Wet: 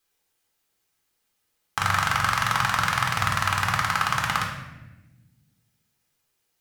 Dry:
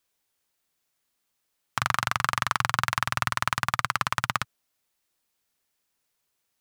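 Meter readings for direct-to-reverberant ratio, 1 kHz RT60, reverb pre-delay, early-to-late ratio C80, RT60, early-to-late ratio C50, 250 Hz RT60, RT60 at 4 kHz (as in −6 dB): 0.0 dB, 0.90 s, 4 ms, 7.0 dB, 1.1 s, 4.5 dB, 2.1 s, 0.75 s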